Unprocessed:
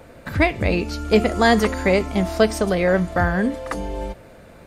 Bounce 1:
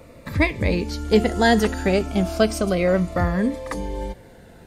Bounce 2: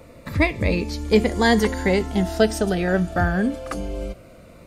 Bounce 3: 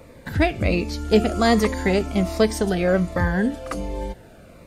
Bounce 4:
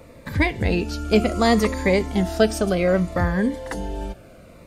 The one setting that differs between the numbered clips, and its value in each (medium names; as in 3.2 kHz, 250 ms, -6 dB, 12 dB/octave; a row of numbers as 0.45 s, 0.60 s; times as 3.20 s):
Shepard-style phaser, rate: 0.32 Hz, 0.21 Hz, 1.3 Hz, 0.65 Hz